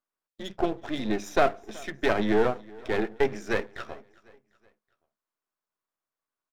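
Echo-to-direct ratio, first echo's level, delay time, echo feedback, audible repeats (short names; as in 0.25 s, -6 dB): -22.0 dB, -23.0 dB, 0.374 s, 45%, 2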